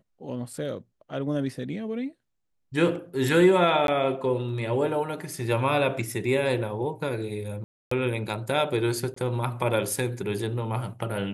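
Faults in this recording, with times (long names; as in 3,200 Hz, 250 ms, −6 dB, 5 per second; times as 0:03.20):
0:03.87–0:03.88: drop-out 12 ms
0:07.64–0:07.91: drop-out 274 ms
0:09.14–0:09.16: drop-out 24 ms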